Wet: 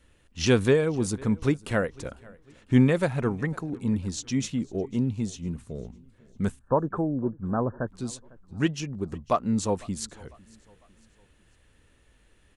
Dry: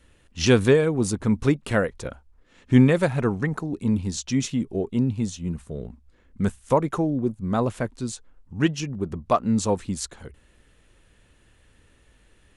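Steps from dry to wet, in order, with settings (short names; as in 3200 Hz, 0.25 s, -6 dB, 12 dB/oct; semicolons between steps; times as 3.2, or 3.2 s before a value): 6.59–7.88 brick-wall FIR low-pass 1800 Hz; feedback echo 0.501 s, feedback 43%, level -24 dB; gain -3.5 dB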